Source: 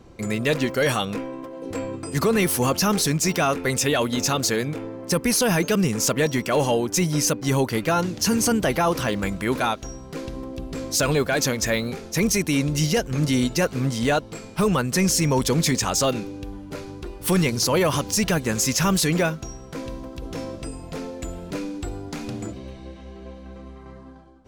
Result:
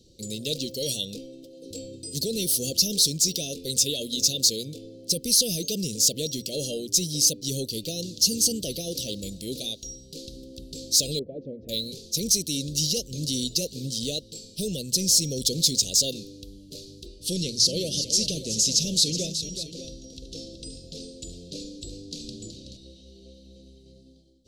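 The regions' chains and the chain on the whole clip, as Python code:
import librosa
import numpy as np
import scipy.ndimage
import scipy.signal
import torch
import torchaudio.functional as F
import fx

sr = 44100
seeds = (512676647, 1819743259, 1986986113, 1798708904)

y = fx.chain(x, sr, fx.lowpass(hz=1100.0, slope=24),
    fx.low_shelf(hz=120.0, db=-11.5), at=(11.19, 11.69))
y = fx.chain(y, sr, fx.lowpass(hz=7800.0, slope=12),
    fx.echo_multitap(ms=(45, 374, 592), db=(-17.0, -10.0, -13.0)), at=(17.06, 22.77))
y = scipy.signal.sosfilt(scipy.signal.ellip(3, 1.0, 50, [540.0, 2700.0], 'bandstop', fs=sr, output='sos'), y)
y = fx.high_shelf_res(y, sr, hz=3100.0, db=10.0, q=3.0)
y = fx.hum_notches(y, sr, base_hz=60, count=2)
y = y * librosa.db_to_amplitude(-9.0)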